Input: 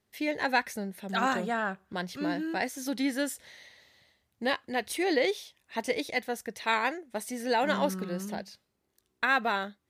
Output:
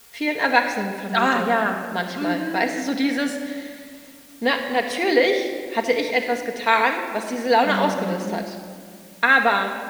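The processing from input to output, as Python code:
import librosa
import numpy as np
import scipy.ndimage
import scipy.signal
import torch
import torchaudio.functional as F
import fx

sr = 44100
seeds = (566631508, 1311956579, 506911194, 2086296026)

p1 = scipy.signal.sosfilt(scipy.signal.bessel(2, 4700.0, 'lowpass', norm='mag', fs=sr, output='sos'), x)
p2 = fx.low_shelf(p1, sr, hz=180.0, db=-10.5)
p3 = fx.quant_dither(p2, sr, seeds[0], bits=8, dither='triangular')
p4 = p2 + (p3 * 10.0 ** (-8.0 / 20.0))
p5 = fx.room_shoebox(p4, sr, seeds[1], volume_m3=3700.0, walls='mixed', distance_m=1.7)
y = p5 * 10.0 ** (5.5 / 20.0)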